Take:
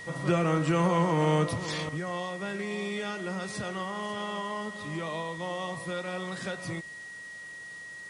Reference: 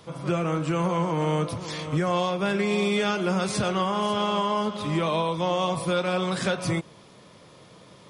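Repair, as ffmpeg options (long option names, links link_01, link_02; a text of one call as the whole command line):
ffmpeg -i in.wav -af "adeclick=threshold=4,bandreject=frequency=1900:width=30,afwtdn=0.0022,asetnsamples=nb_out_samples=441:pad=0,asendcmd='1.89 volume volume 10dB',volume=0dB" out.wav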